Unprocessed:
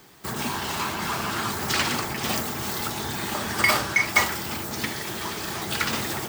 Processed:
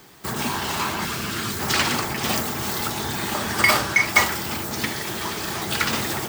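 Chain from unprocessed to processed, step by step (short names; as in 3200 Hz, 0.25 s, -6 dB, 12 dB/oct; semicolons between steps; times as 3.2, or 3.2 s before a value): 1.05–1.6 bell 860 Hz -10.5 dB 1.2 oct; gain +3 dB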